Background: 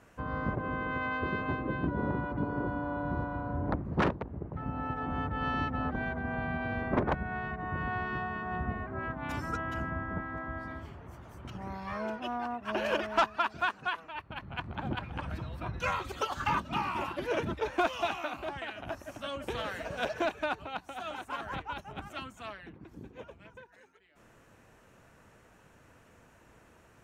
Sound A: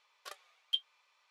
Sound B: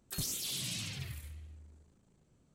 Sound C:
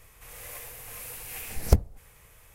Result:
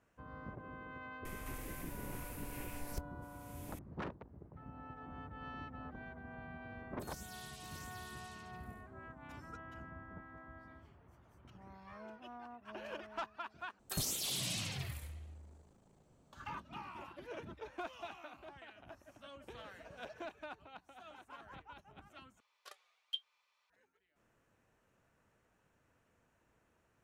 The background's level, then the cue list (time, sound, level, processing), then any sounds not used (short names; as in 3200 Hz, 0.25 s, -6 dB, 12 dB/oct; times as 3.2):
background -15.5 dB
1.25 add C -13 dB + three-band squash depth 100%
6.89 add B -16 dB + echo 0.638 s -3 dB
13.79 replace with B -0.5 dB + bell 750 Hz +9 dB 1.5 oct
22.4 replace with A -7.5 dB